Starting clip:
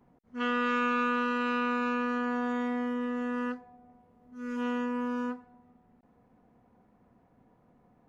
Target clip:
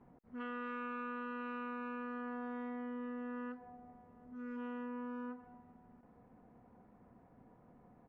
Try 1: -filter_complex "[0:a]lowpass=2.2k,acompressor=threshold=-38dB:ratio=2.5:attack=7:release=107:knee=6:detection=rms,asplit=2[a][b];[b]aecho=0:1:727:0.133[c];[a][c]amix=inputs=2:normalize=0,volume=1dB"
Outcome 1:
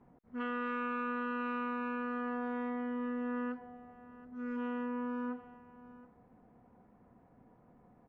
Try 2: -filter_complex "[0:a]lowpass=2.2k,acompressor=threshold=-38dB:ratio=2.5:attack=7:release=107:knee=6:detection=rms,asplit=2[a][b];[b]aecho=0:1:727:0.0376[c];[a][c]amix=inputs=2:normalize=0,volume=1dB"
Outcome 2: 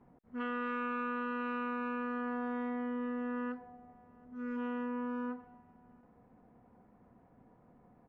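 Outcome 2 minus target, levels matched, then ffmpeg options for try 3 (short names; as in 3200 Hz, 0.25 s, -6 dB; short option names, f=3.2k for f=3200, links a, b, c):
compressor: peak gain reduction -6 dB
-filter_complex "[0:a]lowpass=2.2k,acompressor=threshold=-48dB:ratio=2.5:attack=7:release=107:knee=6:detection=rms,asplit=2[a][b];[b]aecho=0:1:727:0.0376[c];[a][c]amix=inputs=2:normalize=0,volume=1dB"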